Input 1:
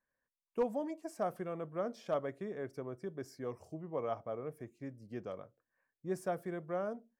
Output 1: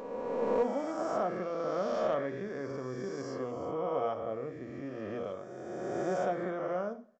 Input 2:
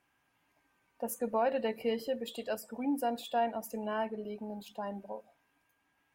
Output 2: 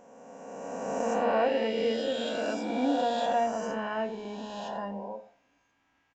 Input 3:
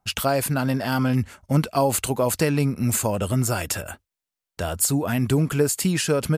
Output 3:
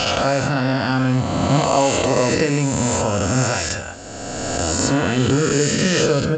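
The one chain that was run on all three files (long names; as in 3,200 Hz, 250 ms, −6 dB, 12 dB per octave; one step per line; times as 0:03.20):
peak hold with a rise ahead of every peak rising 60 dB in 2.37 s
coupled-rooms reverb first 0.42 s, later 1.6 s, from −27 dB, DRR 8.5 dB
downsampling to 16,000 Hz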